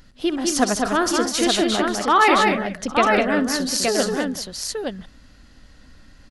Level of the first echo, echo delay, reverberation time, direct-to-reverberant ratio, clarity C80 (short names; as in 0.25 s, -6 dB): -14.5 dB, 64 ms, none, none, none